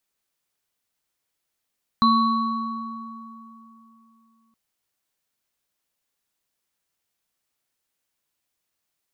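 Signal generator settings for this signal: sine partials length 2.52 s, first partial 227 Hz, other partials 1120/4030 Hz, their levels 3.5/-7.5 dB, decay 3.31 s, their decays 2.81/1.47 s, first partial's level -18 dB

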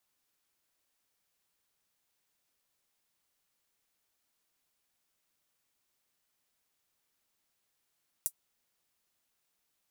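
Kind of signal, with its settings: closed hi-hat, high-pass 8600 Hz, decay 0.07 s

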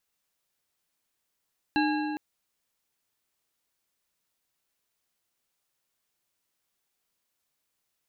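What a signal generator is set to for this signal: metal hit bar, length 0.41 s, lowest mode 303 Hz, modes 5, decay 2.82 s, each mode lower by 3 dB, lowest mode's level -23 dB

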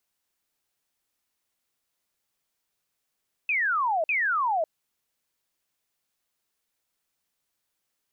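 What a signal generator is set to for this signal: burst of laser zaps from 2600 Hz, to 610 Hz, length 0.55 s sine, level -22 dB, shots 2, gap 0.05 s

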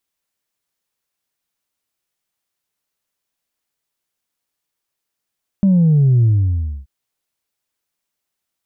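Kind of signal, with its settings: sub drop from 200 Hz, over 1.23 s, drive 0.5 dB, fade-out 0.62 s, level -9.5 dB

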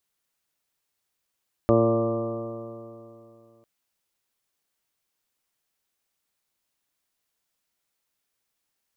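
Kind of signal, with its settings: stretched partials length 1.95 s, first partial 114 Hz, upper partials 0/3/0/4/-7.5/-17/-16/-13.5/-6 dB, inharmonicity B 0.00071, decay 2.80 s, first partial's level -23 dB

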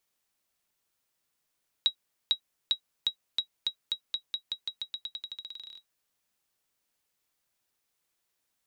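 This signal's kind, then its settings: bouncing ball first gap 0.45 s, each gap 0.89, 3840 Hz, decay 90 ms -13.5 dBFS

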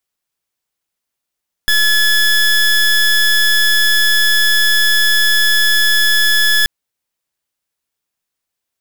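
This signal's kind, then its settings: pulse 1710 Hz, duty 22% -11.5 dBFS 4.98 s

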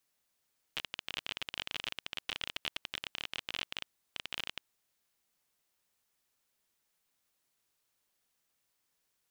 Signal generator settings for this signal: random clicks 27/s -19 dBFS 3.86 s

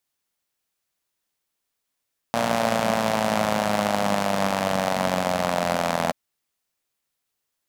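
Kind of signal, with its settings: four-cylinder engine model, changing speed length 3.78 s, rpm 3500, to 2500, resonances 210/620 Hz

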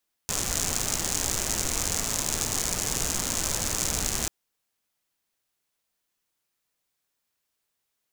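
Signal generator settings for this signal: rain from filtered ticks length 3.99 s, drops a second 120, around 6800 Hz, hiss -1.5 dB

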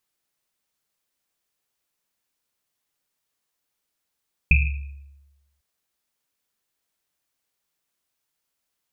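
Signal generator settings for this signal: Risset drum, pitch 70 Hz, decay 1.13 s, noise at 2500 Hz, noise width 250 Hz, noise 30%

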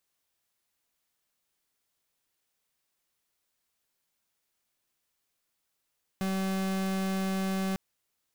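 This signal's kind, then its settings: pulse 191 Hz, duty 41% -30 dBFS 1.55 s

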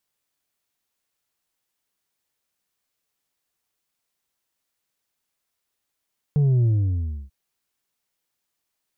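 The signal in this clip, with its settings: sub drop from 150 Hz, over 0.94 s, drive 4 dB, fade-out 0.66 s, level -16 dB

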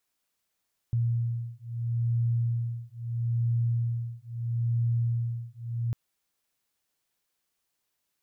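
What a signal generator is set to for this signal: beating tones 117 Hz, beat 0.76 Hz, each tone -28.5 dBFS 5.00 s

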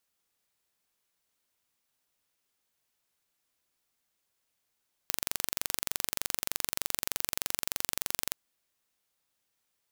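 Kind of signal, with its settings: pulse train 23.3/s, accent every 0, -2.5 dBFS 3.22 s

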